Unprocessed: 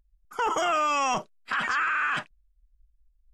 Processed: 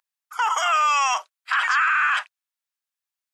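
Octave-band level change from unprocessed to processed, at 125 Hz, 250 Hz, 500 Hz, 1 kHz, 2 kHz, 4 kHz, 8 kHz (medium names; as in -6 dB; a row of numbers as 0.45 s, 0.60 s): under -40 dB, under -25 dB, -5.5 dB, +5.5 dB, +6.5 dB, +6.5 dB, +6.5 dB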